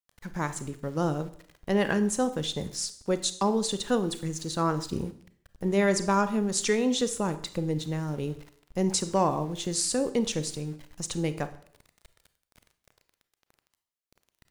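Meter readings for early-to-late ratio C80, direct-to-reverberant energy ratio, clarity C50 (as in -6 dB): 17.0 dB, 11.5 dB, 13.5 dB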